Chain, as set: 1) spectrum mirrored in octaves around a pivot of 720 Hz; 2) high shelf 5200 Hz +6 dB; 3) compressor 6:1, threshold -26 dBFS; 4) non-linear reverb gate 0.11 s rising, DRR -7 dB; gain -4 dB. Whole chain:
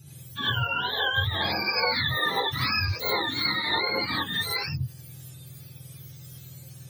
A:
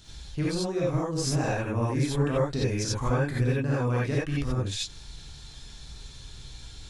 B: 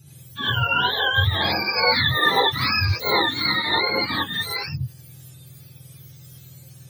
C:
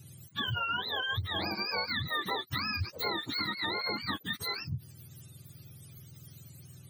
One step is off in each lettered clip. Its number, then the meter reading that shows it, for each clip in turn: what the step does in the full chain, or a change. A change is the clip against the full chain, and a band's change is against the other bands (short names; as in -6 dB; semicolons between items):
1, 4 kHz band -17.5 dB; 3, mean gain reduction 3.0 dB; 4, 250 Hz band +3.0 dB